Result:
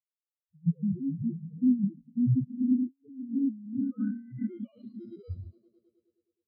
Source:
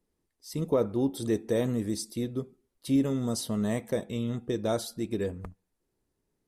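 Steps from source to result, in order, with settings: in parallel at +2.5 dB: limiter -26.5 dBFS, peak gain reduction 11 dB; on the sum: loudest bins only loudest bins 1; swelling echo 0.105 s, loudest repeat 5, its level -17 dB; sample-and-hold 25×; high shelf 4100 Hz +9 dB; thinning echo 70 ms, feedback 76%, high-pass 750 Hz, level -12.5 dB; low-pass sweep 170 Hz -> 4600 Hz, 2.38–4.95; negative-ratio compressor -35 dBFS, ratio -1; spectral expander 4:1; gain +5 dB

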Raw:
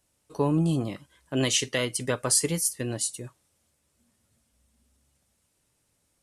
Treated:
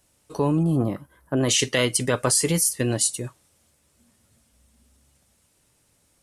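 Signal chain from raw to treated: in parallel at 0 dB: negative-ratio compressor -27 dBFS, ratio -0.5; 0.63–1.49 on the sum: band shelf 4300 Hz -14 dB 2.3 oct

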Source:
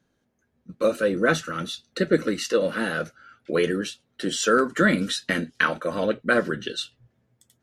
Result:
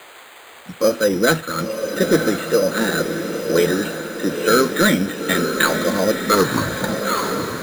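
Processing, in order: tape stop at the end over 1.49 s; on a send at -19.5 dB: reverb, pre-delay 3 ms; on the sum: band noise 360–5300 Hz -45 dBFS; careless resampling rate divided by 8×, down filtered, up hold; in parallel at -11 dB: sine folder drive 7 dB, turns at -6 dBFS; on the sum: diffused feedback echo 0.953 s, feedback 53%, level -6 dB

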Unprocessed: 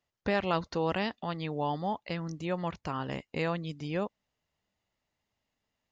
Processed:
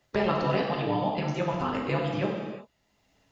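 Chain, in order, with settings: bin magnitudes rounded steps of 15 dB; granular stretch 0.56×, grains 27 ms; high shelf 6300 Hz -4 dB; non-linear reverb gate 0.4 s falling, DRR -1.5 dB; three-band squash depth 40%; gain +3 dB

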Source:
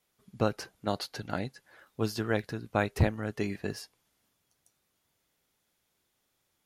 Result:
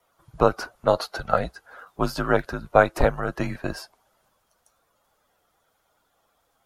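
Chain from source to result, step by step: bin magnitudes rounded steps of 15 dB; band shelf 960 Hz +11 dB; frequency shift -75 Hz; gain +4.5 dB

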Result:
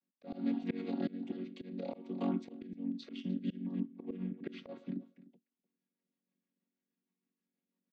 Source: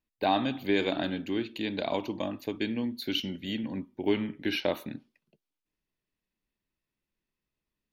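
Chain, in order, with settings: chord vocoder major triad, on F#3; auto swell 0.432 s; on a send: echo 0.3 s -18.5 dB; on the sum: rotary speaker horn 1.2 Hz, later 6.3 Hz, at 3.43; gain +4 dB

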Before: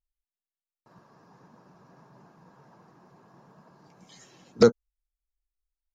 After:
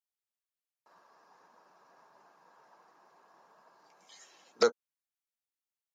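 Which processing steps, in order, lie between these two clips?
HPF 620 Hz 12 dB/oct; gain -2 dB

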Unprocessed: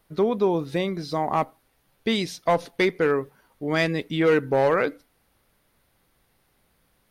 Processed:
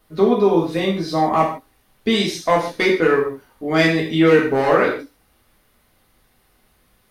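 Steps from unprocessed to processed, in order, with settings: non-linear reverb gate 0.18 s falling, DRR -3.5 dB; gain +1.5 dB

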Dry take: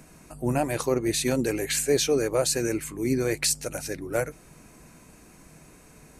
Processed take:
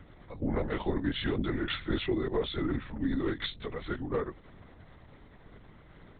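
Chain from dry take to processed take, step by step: delay-line pitch shifter -3.5 st; compressor, threshold -26 dBFS, peak gain reduction 7.5 dB; LPC vocoder at 8 kHz whisper

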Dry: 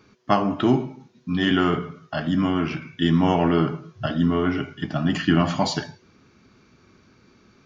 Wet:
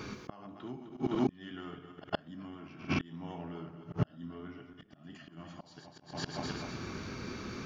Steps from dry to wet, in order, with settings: regenerating reverse delay 0.128 s, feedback 57%, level -8 dB; flipped gate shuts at -19 dBFS, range -38 dB; auto swell 0.209 s; reverse echo 0.113 s -19.5 dB; gain +13 dB

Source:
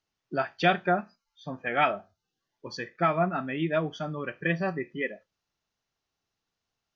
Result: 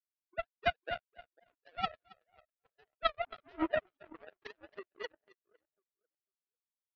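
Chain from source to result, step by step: sine-wave speech; LPF 1600 Hz 12 dB/oct; on a send: split-band echo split 690 Hz, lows 0.498 s, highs 0.273 s, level -7.5 dB; on the sum: power-law curve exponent 3

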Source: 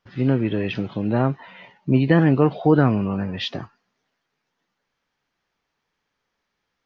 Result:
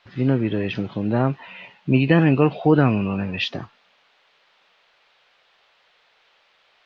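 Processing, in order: 1.27–3.44 bell 2600 Hz +14 dB 0.24 oct; band noise 450–3800 Hz -61 dBFS

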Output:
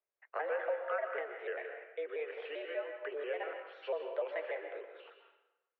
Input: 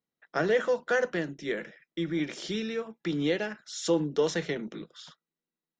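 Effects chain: trilling pitch shifter -4.5 st, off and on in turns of 98 ms; compressor 3:1, threshold -31 dBFS, peak gain reduction 8.5 dB; mistuned SSB +150 Hz 280–2500 Hz; plate-style reverb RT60 0.98 s, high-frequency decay 0.8×, pre-delay 0.11 s, DRR 5 dB; gain -3 dB

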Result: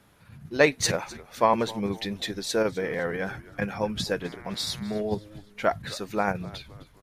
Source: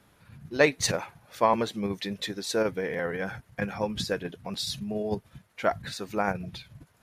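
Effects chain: 4.2–5 buzz 120 Hz, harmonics 19, -50 dBFS 0 dB/oct; frequency-shifting echo 0.257 s, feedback 46%, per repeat -110 Hz, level -19.5 dB; gain +1.5 dB

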